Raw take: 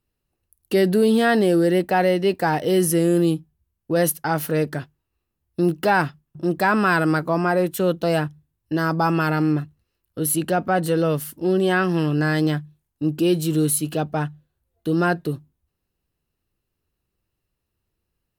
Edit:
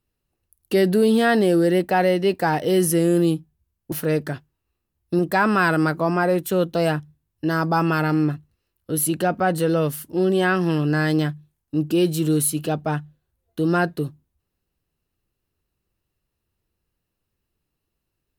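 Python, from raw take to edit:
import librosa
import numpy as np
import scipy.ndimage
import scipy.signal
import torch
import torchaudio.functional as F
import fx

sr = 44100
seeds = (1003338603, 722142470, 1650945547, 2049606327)

y = fx.edit(x, sr, fx.cut(start_s=3.92, length_s=0.46),
    fx.cut(start_s=5.65, length_s=0.82), tone=tone)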